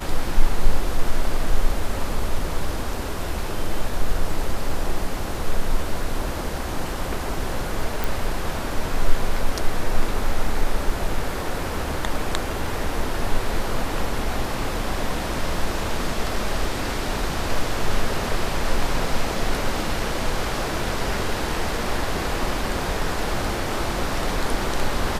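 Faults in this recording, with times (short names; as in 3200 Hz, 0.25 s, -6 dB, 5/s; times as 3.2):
8.04 pop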